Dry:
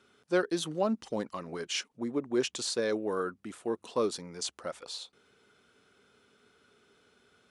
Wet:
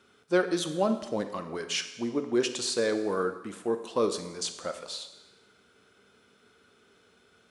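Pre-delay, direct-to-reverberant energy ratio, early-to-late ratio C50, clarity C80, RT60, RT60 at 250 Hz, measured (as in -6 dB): 6 ms, 7.5 dB, 10.0 dB, 12.0 dB, 1.1 s, 1.1 s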